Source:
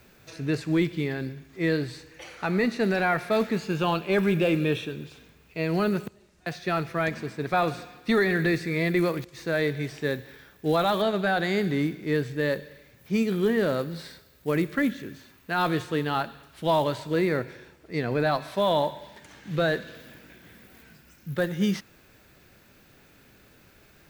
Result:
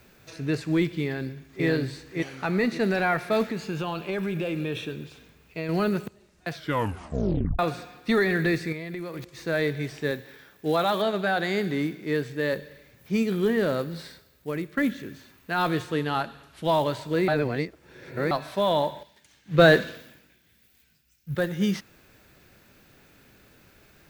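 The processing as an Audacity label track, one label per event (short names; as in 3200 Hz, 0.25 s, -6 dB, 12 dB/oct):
1.030000	1.660000	echo throw 0.56 s, feedback 30%, level -1.5 dB
3.480000	5.690000	compressor, threshold -25 dBFS
6.500000	6.500000	tape stop 1.09 s
8.720000	9.290000	compressor 16:1, threshold -30 dBFS
10.110000	12.530000	HPF 160 Hz 6 dB/oct
14.000000	14.770000	fade out linear, to -9.5 dB
15.940000	16.650000	brick-wall FIR low-pass 13000 Hz
17.280000	18.310000	reverse
19.030000	21.350000	three-band expander depth 100%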